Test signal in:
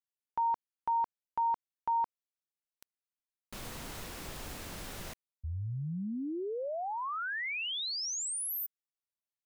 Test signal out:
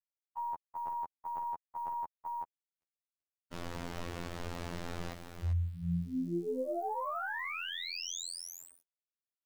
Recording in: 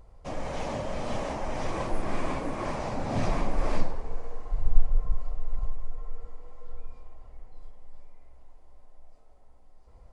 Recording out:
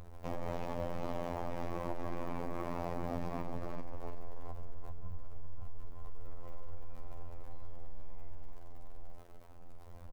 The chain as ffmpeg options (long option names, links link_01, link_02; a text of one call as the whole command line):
ffmpeg -i in.wav -af "lowpass=5000,aeval=exprs='0.631*(cos(1*acos(clip(val(0)/0.631,-1,1)))-cos(1*PI/2))+0.178*(cos(2*acos(clip(val(0)/0.631,-1,1)))-cos(2*PI/2))+0.0112*(cos(7*acos(clip(val(0)/0.631,-1,1)))-cos(7*PI/2))':channel_layout=same,acompressor=threshold=-30dB:ratio=16:attack=2.8:release=220:knee=1:detection=rms,aecho=1:1:385:0.447,alimiter=level_in=11dB:limit=-24dB:level=0:latency=1:release=60,volume=-11dB,aeval=exprs='val(0)*gte(abs(val(0)),0.0015)':channel_layout=same,equalizer=frequency=3700:width=0.42:gain=-6.5,agate=range=-33dB:threshold=-51dB:ratio=3:release=449:detection=peak,afftfilt=real='hypot(re,im)*cos(PI*b)':imag='0':win_size=2048:overlap=0.75,volume=9.5dB" out.wav